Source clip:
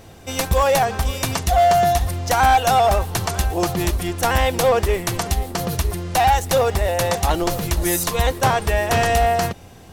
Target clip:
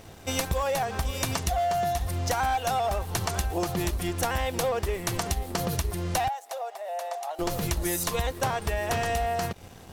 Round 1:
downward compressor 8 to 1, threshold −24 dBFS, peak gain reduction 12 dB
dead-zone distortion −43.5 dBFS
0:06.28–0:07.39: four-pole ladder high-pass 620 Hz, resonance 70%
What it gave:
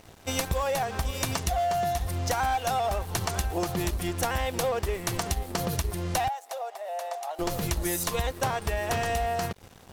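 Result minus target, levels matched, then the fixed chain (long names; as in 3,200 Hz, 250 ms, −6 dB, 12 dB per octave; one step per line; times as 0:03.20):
dead-zone distortion: distortion +6 dB
downward compressor 8 to 1, threshold −24 dBFS, peak gain reduction 12 dB
dead-zone distortion −49.5 dBFS
0:06.28–0:07.39: four-pole ladder high-pass 620 Hz, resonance 70%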